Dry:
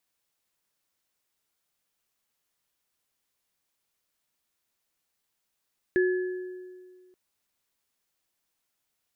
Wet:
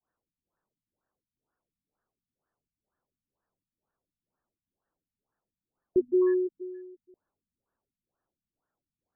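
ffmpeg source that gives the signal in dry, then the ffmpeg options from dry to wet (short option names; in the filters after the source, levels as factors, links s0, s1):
-f lavfi -i "aevalsrc='0.112*pow(10,-3*t/1.89)*sin(2*PI*366*t)+0.0447*pow(10,-3*t/1.2)*sin(2*PI*1710*t)':d=1.18:s=44100"
-filter_complex "[0:a]adynamicequalizer=threshold=0.0126:dfrequency=360:dqfactor=0.71:tfrequency=360:tqfactor=0.71:attack=5:release=100:ratio=0.375:range=3.5:mode=boostabove:tftype=bell,asplit=2[s0][s1];[s1]aeval=exprs='0.0596*(abs(mod(val(0)/0.0596+3,4)-2)-1)':c=same,volume=0.447[s2];[s0][s2]amix=inputs=2:normalize=0,afftfilt=real='re*lt(b*sr/1024,250*pow(1900/250,0.5+0.5*sin(2*PI*2.1*pts/sr)))':imag='im*lt(b*sr/1024,250*pow(1900/250,0.5+0.5*sin(2*PI*2.1*pts/sr)))':win_size=1024:overlap=0.75"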